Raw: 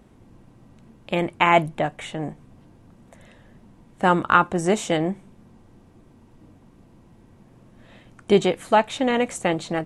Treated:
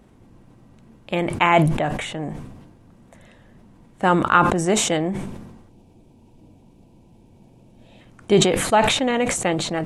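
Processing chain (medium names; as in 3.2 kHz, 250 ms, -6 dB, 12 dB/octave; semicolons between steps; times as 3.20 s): time-frequency box 5.69–8.00 s, 1–2.2 kHz -12 dB; decay stretcher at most 46 dB/s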